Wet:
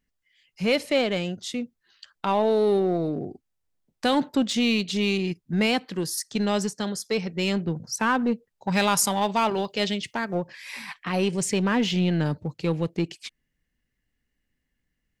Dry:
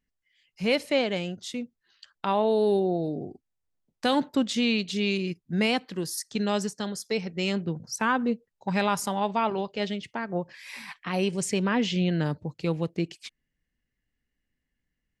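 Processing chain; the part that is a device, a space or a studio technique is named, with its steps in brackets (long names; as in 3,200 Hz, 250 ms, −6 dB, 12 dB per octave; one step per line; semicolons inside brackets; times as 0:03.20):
parallel distortion (in parallel at −6 dB: hard clipping −27 dBFS, distortion −7 dB)
0:08.72–0:10.35: on the sum: high-shelf EQ 3,100 Hz +9.5 dB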